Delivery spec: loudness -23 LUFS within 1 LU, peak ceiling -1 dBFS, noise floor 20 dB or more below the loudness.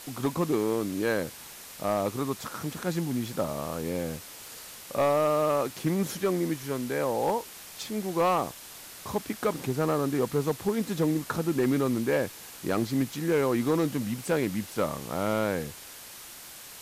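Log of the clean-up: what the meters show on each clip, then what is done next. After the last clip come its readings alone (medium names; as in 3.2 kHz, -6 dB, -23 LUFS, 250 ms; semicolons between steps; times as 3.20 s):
clipped samples 0.7%; clipping level -18.5 dBFS; noise floor -45 dBFS; noise floor target -49 dBFS; loudness -29.0 LUFS; peak level -18.5 dBFS; loudness target -23.0 LUFS
-> clip repair -18.5 dBFS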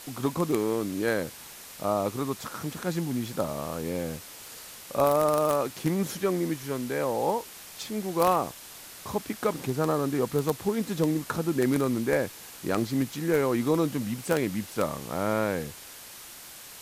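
clipped samples 0.0%; noise floor -45 dBFS; noise floor target -49 dBFS
-> noise reduction 6 dB, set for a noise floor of -45 dBFS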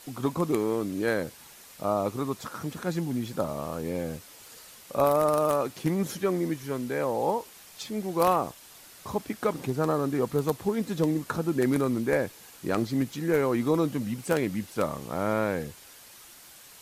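noise floor -50 dBFS; loudness -28.5 LUFS; peak level -9.5 dBFS; loudness target -23.0 LUFS
-> trim +5.5 dB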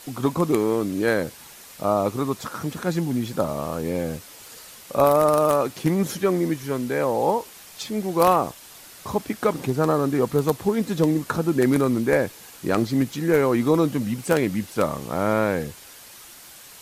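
loudness -23.0 LUFS; peak level -4.0 dBFS; noise floor -45 dBFS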